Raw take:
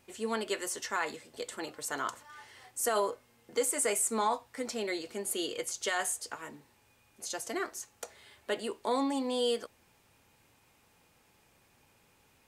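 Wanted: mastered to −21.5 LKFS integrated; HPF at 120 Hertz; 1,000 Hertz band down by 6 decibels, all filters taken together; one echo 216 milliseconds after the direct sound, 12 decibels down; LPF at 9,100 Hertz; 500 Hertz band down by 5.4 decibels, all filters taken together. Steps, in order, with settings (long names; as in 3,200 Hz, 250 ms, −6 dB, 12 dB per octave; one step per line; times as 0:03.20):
high-pass filter 120 Hz
low-pass filter 9,100 Hz
parametric band 500 Hz −5 dB
parametric band 1,000 Hz −6 dB
single-tap delay 216 ms −12 dB
level +15 dB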